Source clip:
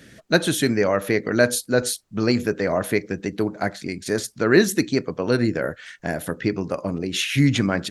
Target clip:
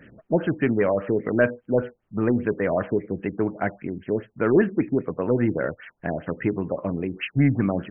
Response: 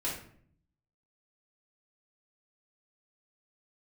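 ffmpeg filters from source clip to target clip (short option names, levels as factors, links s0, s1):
-af "acontrast=51,afftfilt=real='re*lt(b*sr/1024,900*pow(3300/900,0.5+0.5*sin(2*PI*5*pts/sr)))':imag='im*lt(b*sr/1024,900*pow(3300/900,0.5+0.5*sin(2*PI*5*pts/sr)))':win_size=1024:overlap=0.75,volume=0.473"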